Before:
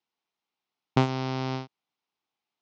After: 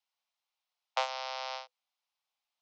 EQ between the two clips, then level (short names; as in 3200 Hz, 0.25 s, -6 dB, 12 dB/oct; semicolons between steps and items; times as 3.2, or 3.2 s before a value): Chebyshev high-pass 500 Hz, order 10; bell 5100 Hz +4.5 dB 1.6 oct; -3.0 dB